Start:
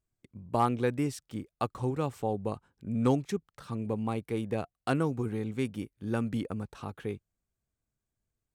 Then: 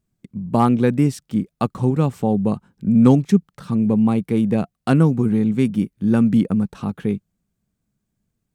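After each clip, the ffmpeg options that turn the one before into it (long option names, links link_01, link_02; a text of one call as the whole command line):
ffmpeg -i in.wav -af "equalizer=frequency=190:width=1.5:gain=14.5,volume=7dB" out.wav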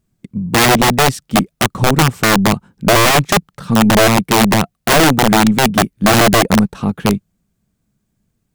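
ffmpeg -i in.wav -af "aeval=exprs='0.841*(cos(1*acos(clip(val(0)/0.841,-1,1)))-cos(1*PI/2))+0.0266*(cos(8*acos(clip(val(0)/0.841,-1,1)))-cos(8*PI/2))':channel_layout=same,aeval=exprs='(mod(4.22*val(0)+1,2)-1)/4.22':channel_layout=same,volume=7.5dB" out.wav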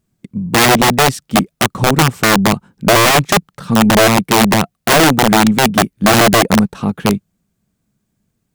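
ffmpeg -i in.wav -af "lowshelf=frequency=68:gain=-7.5,volume=1dB" out.wav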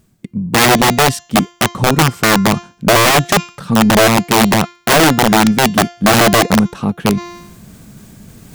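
ffmpeg -i in.wav -af "bandreject=frequency=348.5:width_type=h:width=4,bandreject=frequency=697:width_type=h:width=4,bandreject=frequency=1045.5:width_type=h:width=4,bandreject=frequency=1394:width_type=h:width=4,bandreject=frequency=1742.5:width_type=h:width=4,bandreject=frequency=2091:width_type=h:width=4,bandreject=frequency=2439.5:width_type=h:width=4,bandreject=frequency=2788:width_type=h:width=4,bandreject=frequency=3136.5:width_type=h:width=4,bandreject=frequency=3485:width_type=h:width=4,bandreject=frequency=3833.5:width_type=h:width=4,bandreject=frequency=4182:width_type=h:width=4,bandreject=frequency=4530.5:width_type=h:width=4,bandreject=frequency=4879:width_type=h:width=4,bandreject=frequency=5227.5:width_type=h:width=4,bandreject=frequency=5576:width_type=h:width=4,bandreject=frequency=5924.5:width_type=h:width=4,bandreject=frequency=6273:width_type=h:width=4,bandreject=frequency=6621.5:width_type=h:width=4,bandreject=frequency=6970:width_type=h:width=4,bandreject=frequency=7318.5:width_type=h:width=4,areverse,acompressor=mode=upward:threshold=-14dB:ratio=2.5,areverse" out.wav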